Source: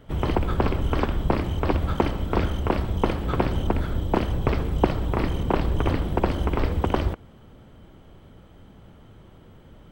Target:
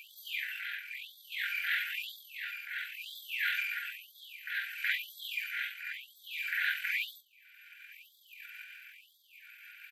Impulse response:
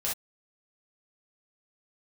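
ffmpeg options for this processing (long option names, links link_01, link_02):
-filter_complex "[0:a]asplit=2[link_01][link_02];[link_02]adelay=43,volume=-12.5dB[link_03];[link_01][link_03]amix=inputs=2:normalize=0,tremolo=f=0.59:d=0.67,equalizer=frequency=125:width_type=o:width=1:gain=12,equalizer=frequency=500:width_type=o:width=1:gain=-11,equalizer=frequency=1000:width_type=o:width=1:gain=5,equalizer=frequency=4000:width_type=o:width=1:gain=4,equalizer=frequency=8000:width_type=o:width=1:gain=-12[link_04];[1:a]atrim=start_sample=2205,atrim=end_sample=3528[link_05];[link_04][link_05]afir=irnorm=-1:irlink=0,afftfilt=real='re*(1-between(b*sr/4096,180,1800))':imag='im*(1-between(b*sr/4096,180,1800))':win_size=4096:overlap=0.75,asetrate=34006,aresample=44100,atempo=1.29684,acompressor=mode=upward:threshold=-23dB:ratio=2.5,afftfilt=real='re*gte(b*sr/1024,740*pow(3300/740,0.5+0.5*sin(2*PI*1*pts/sr)))':imag='im*gte(b*sr/1024,740*pow(3300/740,0.5+0.5*sin(2*PI*1*pts/sr)))':win_size=1024:overlap=0.75,volume=5dB"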